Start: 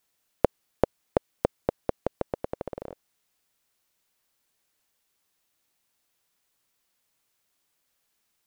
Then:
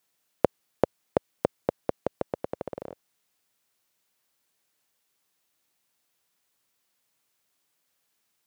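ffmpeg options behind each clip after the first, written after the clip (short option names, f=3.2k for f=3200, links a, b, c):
-af "highpass=89"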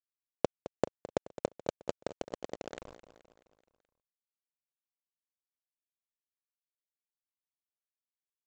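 -af "aemphasis=mode=production:type=50fm,aresample=16000,acrusher=bits=5:dc=4:mix=0:aa=0.000001,aresample=44100,aecho=1:1:214|428|642|856|1070:0.188|0.0998|0.0529|0.028|0.0149,volume=-7dB"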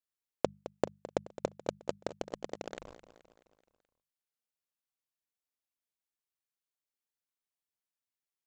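-af "bandreject=f=50:t=h:w=6,bandreject=f=100:t=h:w=6,bandreject=f=150:t=h:w=6,bandreject=f=200:t=h:w=6"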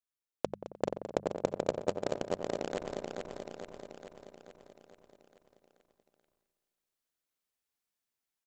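-filter_complex "[0:a]asplit=2[a][b];[b]adelay=90,lowpass=f=1.4k:p=1,volume=-8dB,asplit=2[c][d];[d]adelay=90,lowpass=f=1.4k:p=1,volume=0.54,asplit=2[e][f];[f]adelay=90,lowpass=f=1.4k:p=1,volume=0.54,asplit=2[g][h];[h]adelay=90,lowpass=f=1.4k:p=1,volume=0.54,asplit=2[i][j];[j]adelay=90,lowpass=f=1.4k:p=1,volume=0.54,asplit=2[k][l];[l]adelay=90,lowpass=f=1.4k:p=1,volume=0.54[m];[c][e][g][i][k][m]amix=inputs=6:normalize=0[n];[a][n]amix=inputs=2:normalize=0,dynaudnorm=f=190:g=9:m=6.5dB,asplit=2[o][p];[p]aecho=0:1:433|866|1299|1732|2165|2598|3031|3464:0.668|0.394|0.233|0.137|0.081|0.0478|0.0282|0.0166[q];[o][q]amix=inputs=2:normalize=0,volume=-4.5dB"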